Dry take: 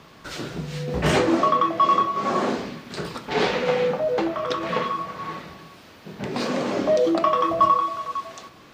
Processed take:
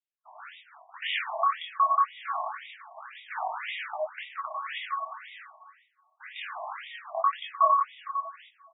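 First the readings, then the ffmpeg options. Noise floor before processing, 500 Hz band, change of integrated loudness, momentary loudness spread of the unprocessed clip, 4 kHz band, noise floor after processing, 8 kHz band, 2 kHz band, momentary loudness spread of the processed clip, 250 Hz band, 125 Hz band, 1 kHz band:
−48 dBFS, −16.0 dB, −7.0 dB, 15 LU, −6.5 dB, −70 dBFS, below −40 dB, −5.0 dB, 21 LU, below −40 dB, below −40 dB, −5.0 dB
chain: -filter_complex "[0:a]afftfilt=real='re*between(b*sr/4096,610,4900)':imag='im*between(b*sr/4096,610,4900)':win_size=4096:overlap=0.75,agate=range=-48dB:threshold=-42dB:ratio=16:detection=peak,acrossover=split=2800[link_01][link_02];[link_02]acontrast=29[link_03];[link_01][link_03]amix=inputs=2:normalize=0,flanger=delay=19.5:depth=5:speed=0.26,asplit=2[link_04][link_05];[link_05]adelay=370,lowpass=frequency=2900:poles=1,volume=-13dB,asplit=2[link_06][link_07];[link_07]adelay=370,lowpass=frequency=2900:poles=1,volume=0.18[link_08];[link_06][link_08]amix=inputs=2:normalize=0[link_09];[link_04][link_09]amix=inputs=2:normalize=0,afftfilt=real='re*between(b*sr/1024,790*pow(2700/790,0.5+0.5*sin(2*PI*1.9*pts/sr))/1.41,790*pow(2700/790,0.5+0.5*sin(2*PI*1.9*pts/sr))*1.41)':imag='im*between(b*sr/1024,790*pow(2700/790,0.5+0.5*sin(2*PI*1.9*pts/sr))/1.41,790*pow(2700/790,0.5+0.5*sin(2*PI*1.9*pts/sr))*1.41)':win_size=1024:overlap=0.75"

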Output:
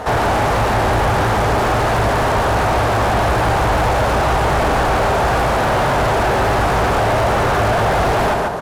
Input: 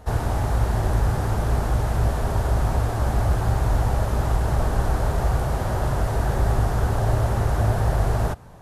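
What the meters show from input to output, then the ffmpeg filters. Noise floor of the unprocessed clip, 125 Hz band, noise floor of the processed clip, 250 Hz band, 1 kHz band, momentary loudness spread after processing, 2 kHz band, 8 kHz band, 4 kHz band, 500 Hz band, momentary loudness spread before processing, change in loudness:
−26 dBFS, +1.0 dB, −16 dBFS, +8.0 dB, +14.0 dB, 0 LU, +15.5 dB, +8.5 dB, +15.0 dB, +12.5 dB, 2 LU, +7.5 dB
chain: -filter_complex "[0:a]aecho=1:1:143|286|429:0.398|0.111|0.0312,asplit=2[link_01][link_02];[link_02]highpass=frequency=720:poles=1,volume=33dB,asoftclip=type=tanh:threshold=-8dB[link_03];[link_01][link_03]amix=inputs=2:normalize=0,lowpass=frequency=2000:poles=1,volume=-6dB"

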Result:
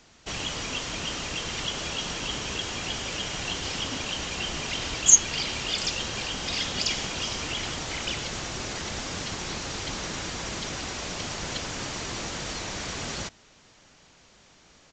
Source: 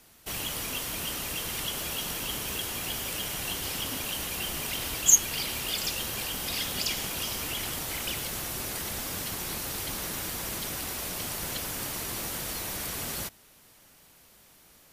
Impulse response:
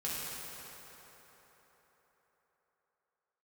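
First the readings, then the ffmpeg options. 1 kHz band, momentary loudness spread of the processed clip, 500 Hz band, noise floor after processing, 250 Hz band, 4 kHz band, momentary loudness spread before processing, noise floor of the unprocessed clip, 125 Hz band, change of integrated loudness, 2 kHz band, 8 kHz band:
+3.5 dB, 6 LU, +3.5 dB, −57 dBFS, +3.5 dB, +3.5 dB, 4 LU, −58 dBFS, +3.5 dB, +1.5 dB, +3.5 dB, +2.0 dB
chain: -af "aresample=16000,aresample=44100,volume=3.5dB"

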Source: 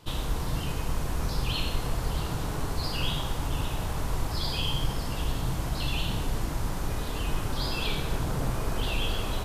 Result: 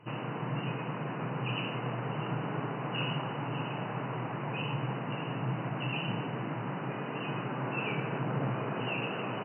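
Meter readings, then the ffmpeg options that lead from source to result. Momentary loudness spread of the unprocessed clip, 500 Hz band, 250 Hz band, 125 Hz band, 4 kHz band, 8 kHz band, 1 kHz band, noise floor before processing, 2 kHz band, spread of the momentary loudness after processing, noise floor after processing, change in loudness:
3 LU, 0.0 dB, 0.0 dB, −3.5 dB, −9.0 dB, below −40 dB, 0.0 dB, −33 dBFS, 0.0 dB, 3 LU, −38 dBFS, −3.5 dB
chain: -filter_complex "[0:a]afftfilt=real='re*between(b*sr/4096,110,3000)':imag='im*between(b*sr/4096,110,3000)':win_size=4096:overlap=0.75,asplit=2[link_01][link_02];[link_02]adelay=130,highpass=300,lowpass=3400,asoftclip=type=hard:threshold=-30dB,volume=-30dB[link_03];[link_01][link_03]amix=inputs=2:normalize=0"

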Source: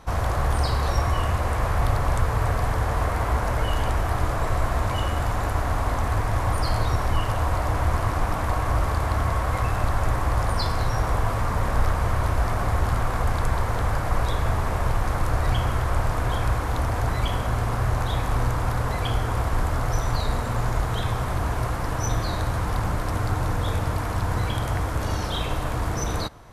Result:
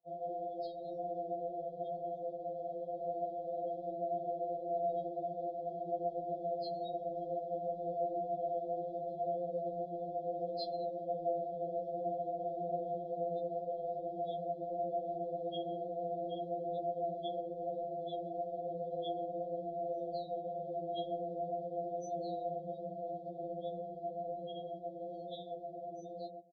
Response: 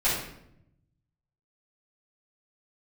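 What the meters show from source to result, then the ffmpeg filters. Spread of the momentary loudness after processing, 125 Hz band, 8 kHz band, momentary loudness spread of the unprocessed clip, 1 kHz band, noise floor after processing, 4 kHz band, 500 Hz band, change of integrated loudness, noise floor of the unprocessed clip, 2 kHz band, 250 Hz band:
5 LU, −30.5 dB, below −30 dB, 3 LU, −12.0 dB, −47 dBFS, −19.0 dB, −4.5 dB, −14.0 dB, −27 dBFS, below −40 dB, −13.5 dB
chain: -filter_complex "[0:a]highpass=150,highshelf=frequency=12000:gain=-9,adynamicsmooth=sensitivity=4.5:basefreq=1800,asplit=2[link_01][link_02];[link_02]adelay=130,lowpass=frequency=1200:poles=1,volume=-4.5dB,asplit=2[link_03][link_04];[link_04]adelay=130,lowpass=frequency=1200:poles=1,volume=0.3,asplit=2[link_05][link_06];[link_06]adelay=130,lowpass=frequency=1200:poles=1,volume=0.3,asplit=2[link_07][link_08];[link_08]adelay=130,lowpass=frequency=1200:poles=1,volume=0.3[link_09];[link_01][link_03][link_05][link_07][link_09]amix=inputs=5:normalize=0,afftdn=noise_reduction=25:noise_floor=-36,acrossover=split=410 4300:gain=0.178 1 0.0631[link_10][link_11][link_12];[link_10][link_11][link_12]amix=inputs=3:normalize=0,afftfilt=real='re*(1-between(b*sr/4096,770,3200))':imag='im*(1-between(b*sr/4096,770,3200))':win_size=4096:overlap=0.75,dynaudnorm=framelen=580:gausssize=13:maxgain=3.5dB,afftfilt=real='re*2.83*eq(mod(b,8),0)':imag='im*2.83*eq(mod(b,8),0)':win_size=2048:overlap=0.75,volume=-4.5dB"

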